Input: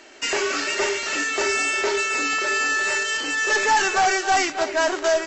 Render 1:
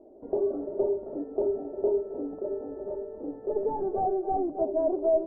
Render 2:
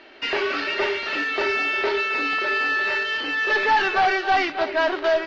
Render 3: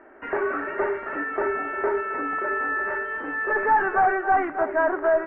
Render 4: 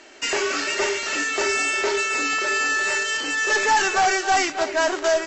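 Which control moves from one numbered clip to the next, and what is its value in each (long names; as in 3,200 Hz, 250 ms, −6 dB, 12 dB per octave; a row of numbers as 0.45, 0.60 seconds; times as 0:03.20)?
Butterworth low-pass, frequency: 650, 4,300, 1,700, 12,000 Hertz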